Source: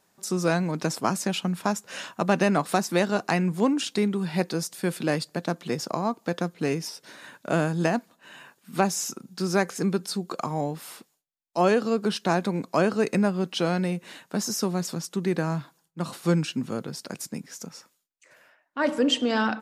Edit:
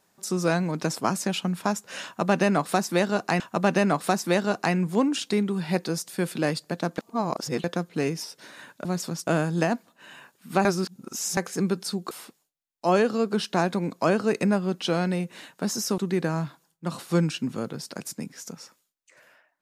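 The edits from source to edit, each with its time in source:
2.05–3.4 loop, 2 plays
5.63–6.29 reverse
8.88–9.6 reverse
10.34–10.83 cut
14.7–15.12 move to 7.5

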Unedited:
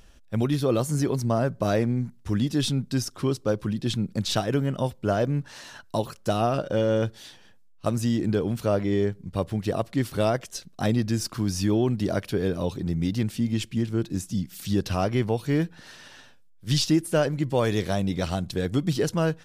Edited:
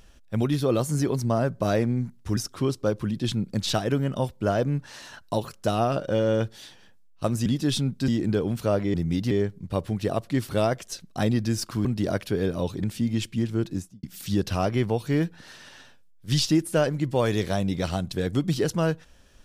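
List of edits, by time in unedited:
2.37–2.99 move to 8.08
11.48–11.87 cut
12.85–13.22 move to 8.94
14.08–14.42 studio fade out

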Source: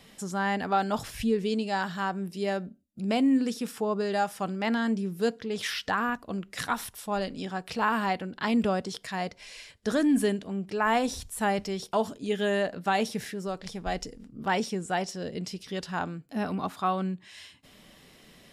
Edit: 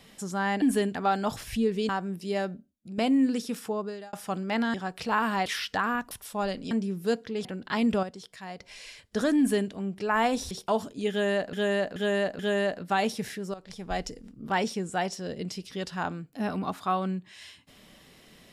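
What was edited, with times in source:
1.56–2.01 cut
2.62–3.1 fade out, to -9 dB
3.75–4.25 fade out
4.86–5.6 swap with 7.44–8.16
6.25–6.84 cut
8.74–9.31 gain -8.5 dB
10.09–10.42 copy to 0.62
11.22–11.76 cut
12.35–12.78 loop, 4 plays
13.5–13.87 fade in, from -13.5 dB

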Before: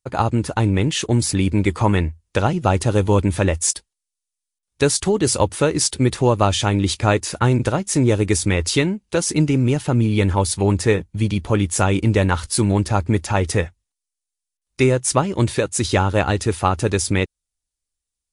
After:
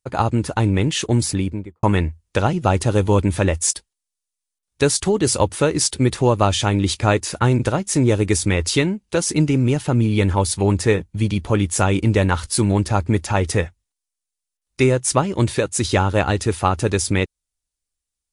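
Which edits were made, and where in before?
1.19–1.83 studio fade out

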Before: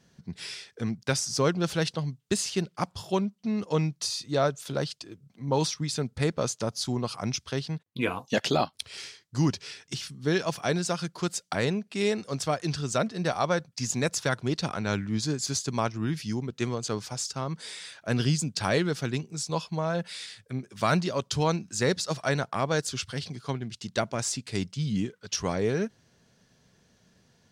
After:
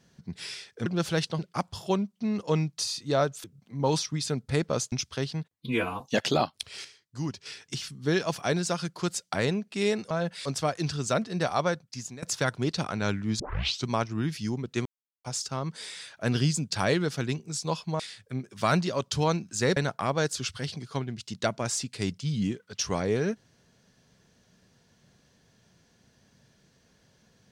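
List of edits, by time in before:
0.86–1.5 cut
2.03–2.62 cut
4.67–5.12 cut
6.6–7.27 cut
7.89–8.2 stretch 1.5×
9.04–9.65 gain -8 dB
13.47–14.07 fade out, to -21.5 dB
15.24 tape start 0.48 s
16.7–17.09 mute
19.84–20.19 move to 12.3
21.96–22.3 cut

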